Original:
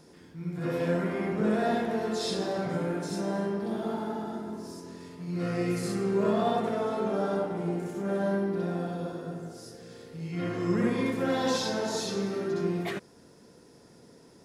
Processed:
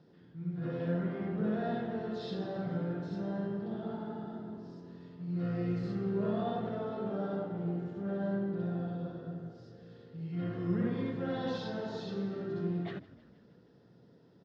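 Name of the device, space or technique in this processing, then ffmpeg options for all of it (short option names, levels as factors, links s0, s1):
frequency-shifting delay pedal into a guitar cabinet: -filter_complex "[0:a]asplit=7[s0][s1][s2][s3][s4][s5][s6];[s1]adelay=157,afreqshift=-39,volume=0.106[s7];[s2]adelay=314,afreqshift=-78,volume=0.0692[s8];[s3]adelay=471,afreqshift=-117,volume=0.0447[s9];[s4]adelay=628,afreqshift=-156,volume=0.0292[s10];[s5]adelay=785,afreqshift=-195,volume=0.0188[s11];[s6]adelay=942,afreqshift=-234,volume=0.0123[s12];[s0][s7][s8][s9][s10][s11][s12]amix=inputs=7:normalize=0,highpass=75,equalizer=f=120:t=q:w=4:g=9,equalizer=f=180:t=q:w=4:g=6,equalizer=f=1000:t=q:w=4:g=-5,equalizer=f=2300:t=q:w=4:g=-9,lowpass=f=3900:w=0.5412,lowpass=f=3900:w=1.3066,volume=0.398"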